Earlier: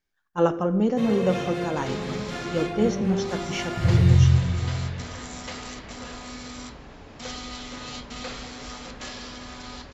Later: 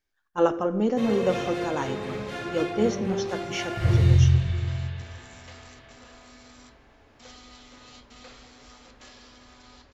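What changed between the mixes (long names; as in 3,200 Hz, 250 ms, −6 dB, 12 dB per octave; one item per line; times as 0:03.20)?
second sound −12.0 dB
master: add parametric band 170 Hz −10.5 dB 0.34 octaves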